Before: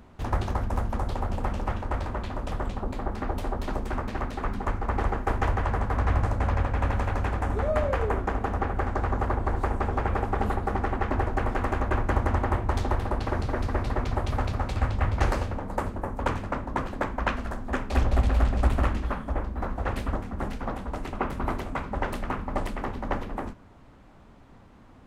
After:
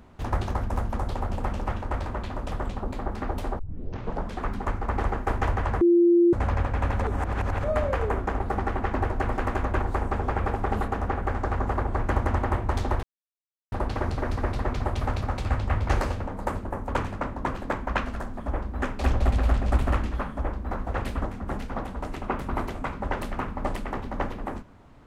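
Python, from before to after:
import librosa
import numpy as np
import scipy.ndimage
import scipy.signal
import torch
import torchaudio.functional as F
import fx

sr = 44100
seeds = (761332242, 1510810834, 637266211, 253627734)

y = fx.edit(x, sr, fx.tape_start(start_s=3.59, length_s=0.84),
    fx.bleep(start_s=5.81, length_s=0.52, hz=345.0, db=-14.5),
    fx.reverse_span(start_s=7.02, length_s=0.62),
    fx.swap(start_s=8.4, length_s=1.11, other_s=10.57, other_length_s=1.42),
    fx.insert_silence(at_s=13.03, length_s=0.69),
    fx.duplicate(start_s=19.22, length_s=0.4, to_s=17.71), tone=tone)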